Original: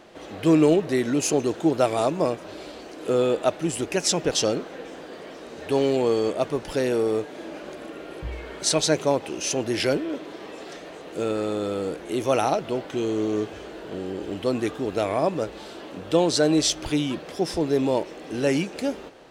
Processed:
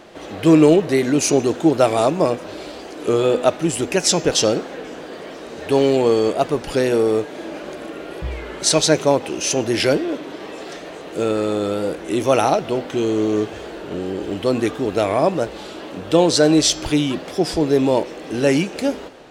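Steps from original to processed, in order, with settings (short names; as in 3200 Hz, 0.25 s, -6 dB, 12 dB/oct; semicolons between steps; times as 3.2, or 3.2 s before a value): de-hum 249 Hz, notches 30; record warp 33 1/3 rpm, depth 100 cents; gain +6 dB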